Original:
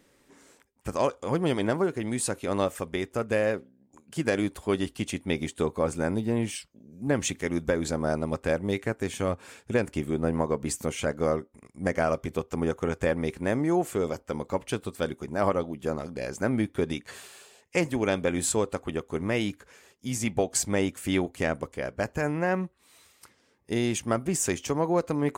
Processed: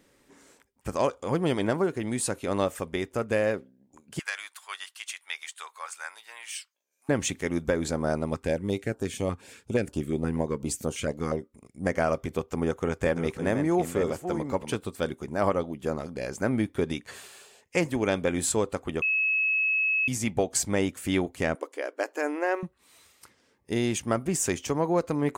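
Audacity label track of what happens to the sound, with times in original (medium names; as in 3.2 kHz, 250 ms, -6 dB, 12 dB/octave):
4.190000	7.090000	high-pass 1.1 kHz 24 dB/octave
8.340000	11.840000	step-sequenced notch 8.4 Hz 590–2100 Hz
12.560000	14.800000	chunks repeated in reverse 491 ms, level -8 dB
19.020000	20.080000	bleep 2.58 kHz -22 dBFS
21.550000	22.630000	brick-wall FIR high-pass 270 Hz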